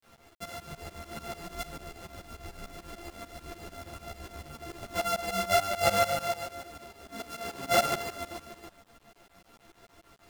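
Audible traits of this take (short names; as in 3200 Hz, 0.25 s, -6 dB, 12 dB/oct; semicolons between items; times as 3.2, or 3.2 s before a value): a buzz of ramps at a fixed pitch in blocks of 64 samples; tremolo saw up 6.8 Hz, depth 95%; a quantiser's noise floor 10-bit, dither none; a shimmering, thickened sound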